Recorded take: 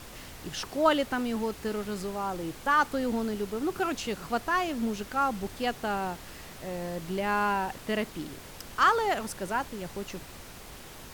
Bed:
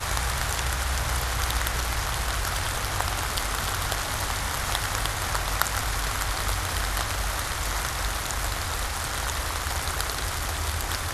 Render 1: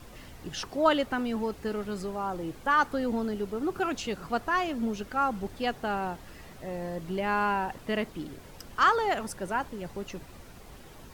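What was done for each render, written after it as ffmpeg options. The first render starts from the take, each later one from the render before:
-af "afftdn=nr=8:nf=-46"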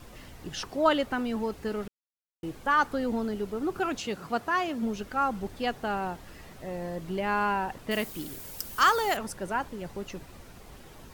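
-filter_complex "[0:a]asettb=1/sr,asplit=3[a][b][c];[a]atrim=end=3.984[d];[b]atrim=start=3.98:end=4.83,asetpts=PTS-STARTPTS,afade=t=in:d=0.004:c=qsin,afade=t=out:st=0.846:d=0.004:c=qsin,highpass=91[e];[c]atrim=start=4.826[f];[d][e]acrossfade=d=0.004:c1=hsin:c2=qsin[g];[g][f]acrossfade=d=0.004:c1=qsin:c2=hsin,asettb=1/sr,asplit=3[h][i][j];[h]atrim=end=7.914[k];[i]atrim=start=7.91:end=9.17,asetpts=PTS-STARTPTS,afade=t=in:d=0.004:c=qsin,afade=t=out:st=1.256:d=0.004:c=qsin,aemphasis=mode=production:type=75fm[l];[j]atrim=start=9.166[m];[k][l]acrossfade=d=0.004:c1=hsin:c2=qsin[n];[n][m]acrossfade=d=0.004:c1=qsin:c2=hsin,asplit=3[o][p][q];[o]atrim=end=1.88,asetpts=PTS-STARTPTS,afade=t=out:st=1.876:d=0.004:c=hsin[r];[p]atrim=start=1.88:end=2.43,asetpts=PTS-STARTPTS,volume=0[s];[q]atrim=start=2.43,asetpts=PTS-STARTPTS,afade=t=in:d=0.004:c=hsin[t];[r][s][t]concat=n=3:v=0:a=1"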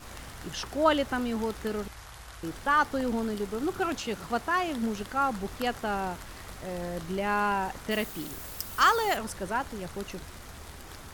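-filter_complex "[1:a]volume=-18.5dB[a];[0:a][a]amix=inputs=2:normalize=0"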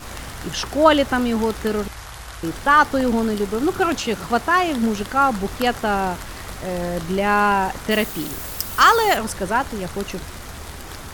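-af "volume=10dB,alimiter=limit=-2dB:level=0:latency=1"

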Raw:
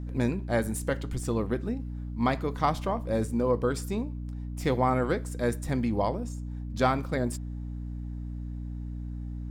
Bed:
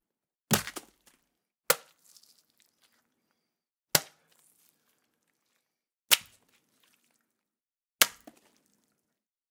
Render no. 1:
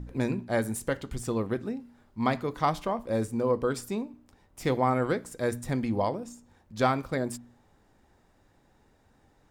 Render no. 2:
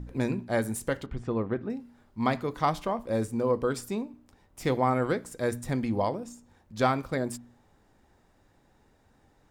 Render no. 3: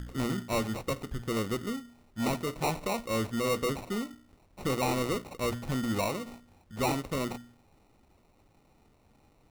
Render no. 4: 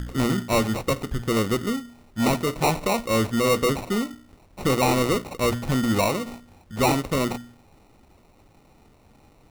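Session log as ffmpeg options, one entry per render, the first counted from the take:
-af "bandreject=f=60:t=h:w=4,bandreject=f=120:t=h:w=4,bandreject=f=180:t=h:w=4,bandreject=f=240:t=h:w=4,bandreject=f=300:t=h:w=4"
-filter_complex "[0:a]asettb=1/sr,asplit=3[a][b][c];[a]atrim=end=1.064[d];[b]atrim=start=1.06:end=1.7,asetpts=PTS-STARTPTS,afade=t=in:d=0.004:c=qsin,afade=t=out:st=0.636:d=0.004:c=qsin,lowpass=2.3k[e];[c]atrim=start=1.696[f];[d][e]acrossfade=d=0.004:c1=hsin:c2=qsin[g];[g][f]acrossfade=d=0.004:c1=qsin:c2=hsin"
-af "acrusher=samples=27:mix=1:aa=0.000001,asoftclip=type=tanh:threshold=-23dB"
-af "volume=8.5dB"

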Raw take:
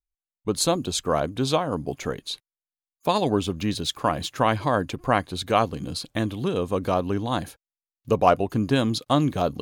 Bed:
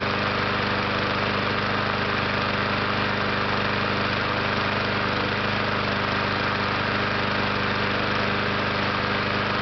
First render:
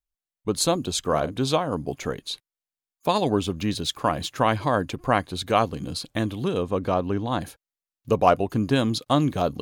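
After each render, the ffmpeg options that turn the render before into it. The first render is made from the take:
-filter_complex "[0:a]asettb=1/sr,asplit=3[a][b][c];[a]atrim=end=0.994[d];[b]atrim=start=0.99:end=1.4,asetpts=PTS-STARTPTS,afade=t=in:d=0.004:c=qsin,afade=t=out:st=0.406:d=0.004:c=qsin,asplit=2[e][f];[f]adelay=45,volume=-13dB[g];[e][g]amix=inputs=2:normalize=0,atrim=end_sample=18081[h];[c]atrim=start=1.396[i];[d][h]acrossfade=d=0.004:c1=hsin:c2=qsin[j];[j][i]acrossfade=d=0.004:c1=qsin:c2=hsin,asettb=1/sr,asplit=3[k][l][m];[k]atrim=end=6.624[n];[l]atrim=start=6.62:end=7.41,asetpts=PTS-STARTPTS,afade=t=in:d=0.004:c=qsin,afade=t=out:st=0.786:d=0.004:c=qsin,lowpass=f=3.5k:p=1[o];[m]atrim=start=7.406[p];[n][o]acrossfade=d=0.004:c1=hsin:c2=qsin[q];[q][p]acrossfade=d=0.004:c1=qsin:c2=hsin"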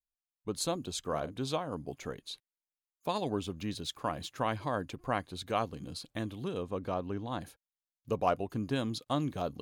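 -af "volume=-11dB"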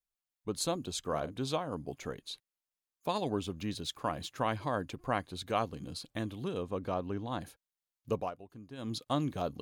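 -filter_complex "[0:a]asplit=3[a][b][c];[a]atrim=end=8.31,asetpts=PTS-STARTPTS,afade=t=out:st=8.15:d=0.16:silence=0.177828[d];[b]atrim=start=8.31:end=8.77,asetpts=PTS-STARTPTS,volume=-15dB[e];[c]atrim=start=8.77,asetpts=PTS-STARTPTS,afade=t=in:d=0.16:silence=0.177828[f];[d][e][f]concat=n=3:v=0:a=1"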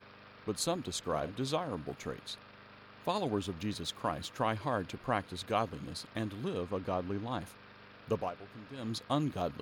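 -filter_complex "[1:a]volume=-31dB[a];[0:a][a]amix=inputs=2:normalize=0"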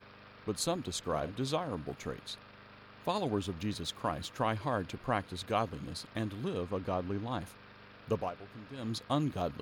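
-af "lowshelf=f=86:g=5"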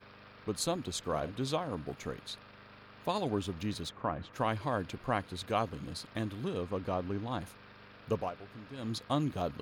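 -filter_complex "[0:a]asplit=3[a][b][c];[a]afade=t=out:st=3.88:d=0.02[d];[b]lowpass=2k,afade=t=in:st=3.88:d=0.02,afade=t=out:st=4.32:d=0.02[e];[c]afade=t=in:st=4.32:d=0.02[f];[d][e][f]amix=inputs=3:normalize=0"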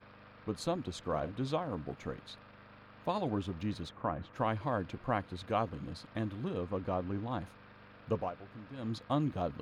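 -af "lowpass=f=2k:p=1,bandreject=f=410:w=12"

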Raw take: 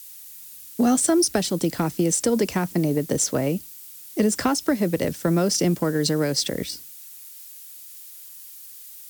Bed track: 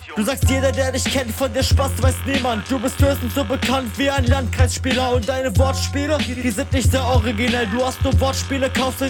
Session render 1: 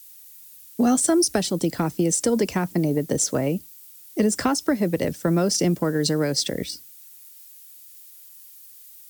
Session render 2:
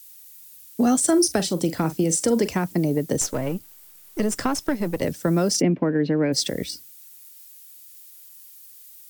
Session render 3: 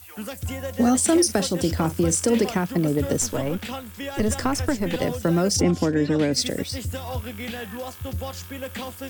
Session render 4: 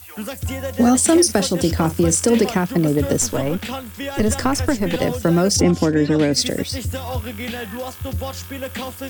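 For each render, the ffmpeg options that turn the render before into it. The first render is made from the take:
-af "afftdn=nr=6:nf=-43"
-filter_complex "[0:a]asettb=1/sr,asplit=3[a][b][c];[a]atrim=end=1.044[d];[b]atrim=start=1.04:end=2.48,asetpts=PTS-STARTPTS,afade=t=in:d=0.004:c=qsin,afade=t=out:st=1.436:d=0.004:c=qsin,asplit=2[e][f];[f]adelay=43,volume=-13dB[g];[e][g]amix=inputs=2:normalize=0,atrim=end_sample=63504[h];[c]atrim=start=2.476[i];[d][h]acrossfade=d=0.004:c1=hsin:c2=qsin[j];[j][i]acrossfade=d=0.004:c1=qsin:c2=hsin,asettb=1/sr,asplit=3[k][l][m];[k]atrim=end=3.214[n];[l]atrim=start=3.21:end=5.02,asetpts=PTS-STARTPTS,afade=t=in:d=0.004:c=qsin,afade=t=out:st=1.806:d=0.004:c=qsin,aeval=exprs='if(lt(val(0),0),0.447*val(0),val(0))':c=same[o];[m]atrim=start=5.016[p];[n][o]acrossfade=d=0.004:c1=hsin:c2=qsin[q];[q][p]acrossfade=d=0.004:c1=qsin:c2=hsin,asplit=3[r][s][t];[r]afade=t=out:st=5.6:d=0.02[u];[s]highpass=110,equalizer=f=260:t=q:w=4:g=8,equalizer=f=1.3k:t=q:w=4:g=-5,equalizer=f=2.4k:t=q:w=4:g=6,lowpass=f=2.6k:w=0.5412,lowpass=f=2.6k:w=1.3066,afade=t=in:st=5.6:d=0.02,afade=t=out:st=6.32:d=0.02[v];[t]afade=t=in:st=6.32:d=0.02[w];[u][v][w]amix=inputs=3:normalize=0"
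-filter_complex "[1:a]volume=-14dB[a];[0:a][a]amix=inputs=2:normalize=0"
-af "volume=4.5dB"

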